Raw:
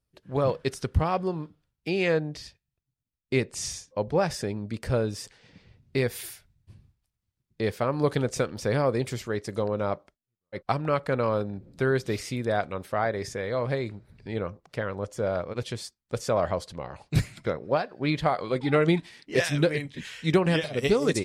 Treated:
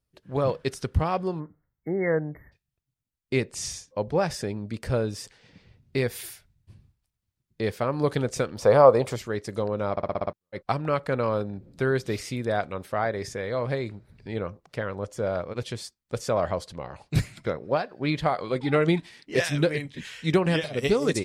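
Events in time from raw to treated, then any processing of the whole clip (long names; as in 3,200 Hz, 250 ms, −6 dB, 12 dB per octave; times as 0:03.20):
0:01.40–0:02.53: time-frequency box erased 2,200–12,000 Hz
0:08.60–0:09.16: flat-topped bell 780 Hz +11.5 dB
0:09.91: stutter in place 0.06 s, 7 plays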